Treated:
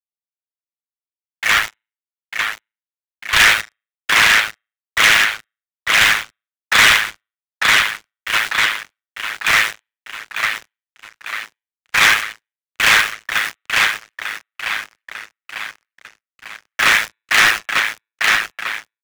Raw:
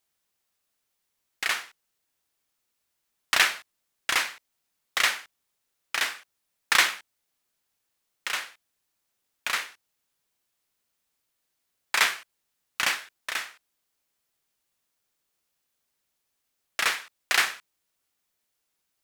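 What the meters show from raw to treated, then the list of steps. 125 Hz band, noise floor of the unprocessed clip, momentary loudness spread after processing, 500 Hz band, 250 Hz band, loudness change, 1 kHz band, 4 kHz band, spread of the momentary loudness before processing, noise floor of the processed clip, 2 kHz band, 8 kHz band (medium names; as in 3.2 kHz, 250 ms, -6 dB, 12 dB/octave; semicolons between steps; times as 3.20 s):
no reading, -79 dBFS, 18 LU, +12.0 dB, +15.5 dB, +11.5 dB, +13.0 dB, +12.5 dB, 17 LU, under -85 dBFS, +15.0 dB, +10.5 dB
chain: spectral contrast enhancement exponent 1.6; transient shaper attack -1 dB, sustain +6 dB; gate with hold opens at -37 dBFS; low-pass 4.4 kHz 24 dB/octave; small samples zeroed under -38.5 dBFS; on a send: feedback delay 898 ms, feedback 59%, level -5 dB; on the sum: dynamic bell 3.4 kHz, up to +3 dB, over -50 dBFS, Q 7.7; in parallel at -2 dB: level held to a coarse grid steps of 15 dB; on the sum: de-hum 134.1 Hz, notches 30; ring modulator 54 Hz; waveshaping leveller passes 5; three bands expanded up and down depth 100%; trim -3 dB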